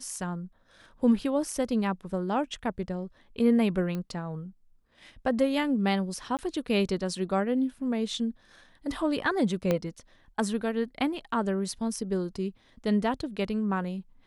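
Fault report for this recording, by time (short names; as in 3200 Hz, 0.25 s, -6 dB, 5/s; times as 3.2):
3.95 pop -22 dBFS
6.37–6.39 gap 18 ms
9.71 pop -13 dBFS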